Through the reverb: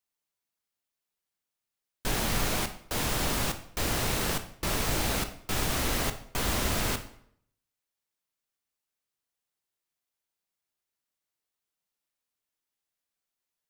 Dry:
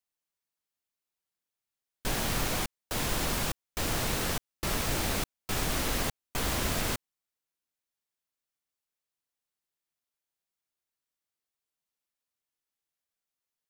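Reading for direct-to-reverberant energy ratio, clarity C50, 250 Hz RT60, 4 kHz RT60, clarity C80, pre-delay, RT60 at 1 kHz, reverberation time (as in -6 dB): 7.5 dB, 11.5 dB, 0.70 s, 0.55 s, 15.0 dB, 16 ms, 0.65 s, 0.65 s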